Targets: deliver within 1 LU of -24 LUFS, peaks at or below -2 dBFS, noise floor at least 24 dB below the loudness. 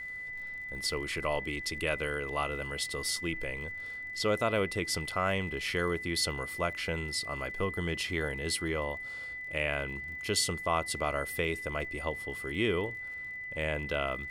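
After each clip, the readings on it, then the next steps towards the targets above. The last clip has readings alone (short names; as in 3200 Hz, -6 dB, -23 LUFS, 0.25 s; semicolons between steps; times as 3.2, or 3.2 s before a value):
ticks 49/s; steady tone 2000 Hz; tone level -38 dBFS; loudness -32.5 LUFS; peak -14.5 dBFS; loudness target -24.0 LUFS
-> de-click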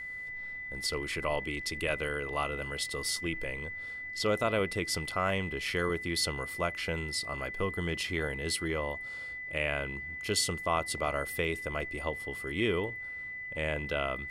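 ticks 0.21/s; steady tone 2000 Hz; tone level -38 dBFS
-> notch 2000 Hz, Q 30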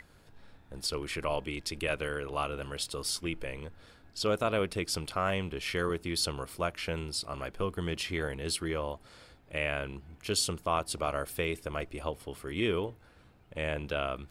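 steady tone none; loudness -33.5 LUFS; peak -15.5 dBFS; loudness target -24.0 LUFS
-> gain +9.5 dB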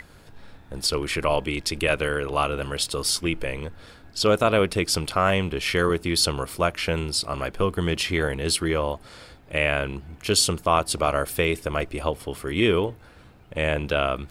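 loudness -24.0 LUFS; peak -6.0 dBFS; noise floor -50 dBFS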